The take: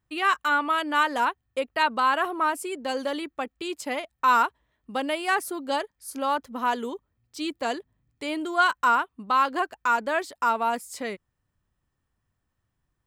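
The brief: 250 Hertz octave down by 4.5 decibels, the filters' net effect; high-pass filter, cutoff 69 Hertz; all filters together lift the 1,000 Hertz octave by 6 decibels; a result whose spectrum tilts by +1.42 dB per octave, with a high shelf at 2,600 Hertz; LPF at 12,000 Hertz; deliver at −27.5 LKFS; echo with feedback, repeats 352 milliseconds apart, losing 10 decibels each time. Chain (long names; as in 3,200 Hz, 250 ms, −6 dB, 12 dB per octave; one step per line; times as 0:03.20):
high-pass filter 69 Hz
low-pass filter 12,000 Hz
parametric band 250 Hz −6.5 dB
parametric band 1,000 Hz +8.5 dB
high-shelf EQ 2,600 Hz −7.5 dB
repeating echo 352 ms, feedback 32%, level −10 dB
level −6.5 dB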